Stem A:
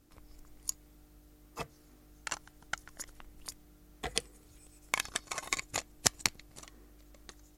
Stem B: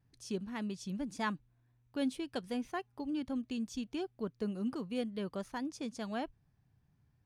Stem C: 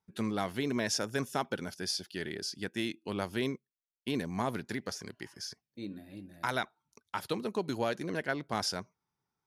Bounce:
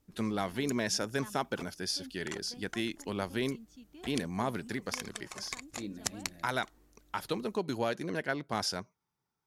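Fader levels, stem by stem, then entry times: -7.5 dB, -14.5 dB, 0.0 dB; 0.00 s, 0.00 s, 0.00 s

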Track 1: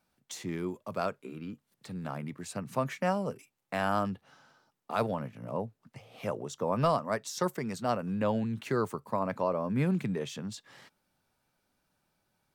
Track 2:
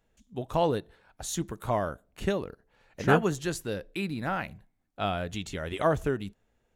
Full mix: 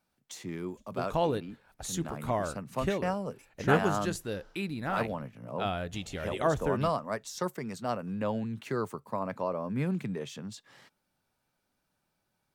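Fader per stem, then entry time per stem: -2.5 dB, -2.5 dB; 0.00 s, 0.60 s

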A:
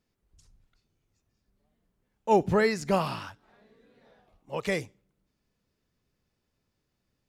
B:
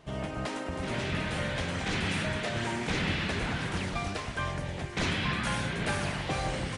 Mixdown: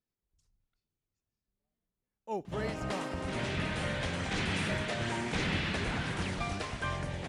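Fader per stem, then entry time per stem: -14.5 dB, -2.0 dB; 0.00 s, 2.45 s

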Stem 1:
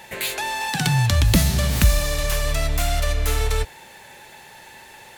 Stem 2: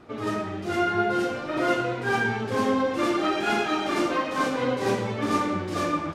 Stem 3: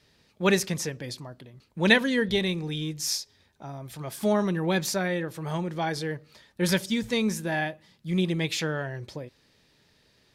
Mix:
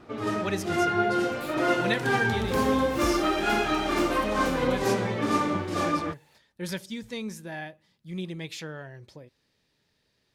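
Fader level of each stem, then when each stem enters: -19.5 dB, -0.5 dB, -9.0 dB; 1.20 s, 0.00 s, 0.00 s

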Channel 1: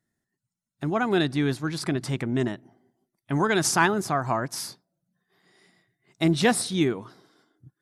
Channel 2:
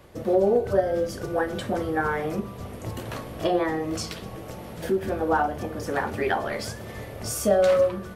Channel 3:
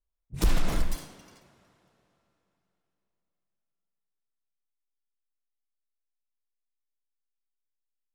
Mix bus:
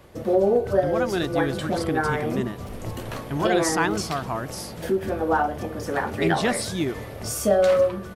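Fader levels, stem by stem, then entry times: -3.0 dB, +1.0 dB, -19.5 dB; 0.00 s, 0.00 s, 2.25 s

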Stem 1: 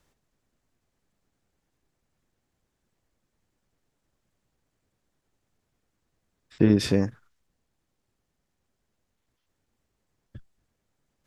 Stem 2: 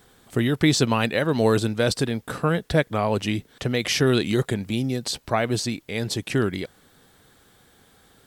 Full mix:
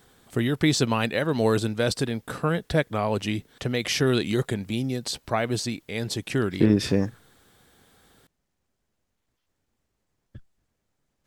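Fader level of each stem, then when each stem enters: 0.0 dB, -2.5 dB; 0.00 s, 0.00 s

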